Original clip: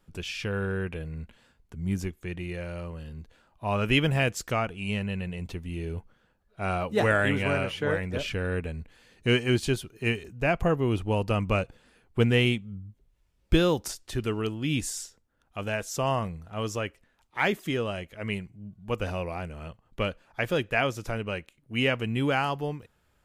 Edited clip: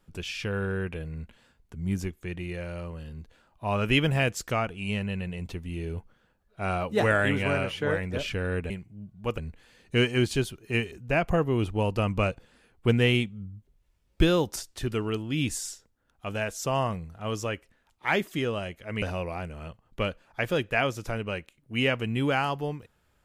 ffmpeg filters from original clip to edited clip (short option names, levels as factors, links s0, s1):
-filter_complex "[0:a]asplit=4[s0][s1][s2][s3];[s0]atrim=end=8.702[s4];[s1]atrim=start=18.338:end=19.022[s5];[s2]atrim=start=8.698:end=18.342[s6];[s3]atrim=start=19.018[s7];[s4][s5]acrossfade=d=0.004:c1=hsin:c2=hsin[s8];[s8][s6]acrossfade=d=0.004:c1=hsin:c2=hsin[s9];[s9][s7]acrossfade=d=0.004:c1=hsin:c2=hsin"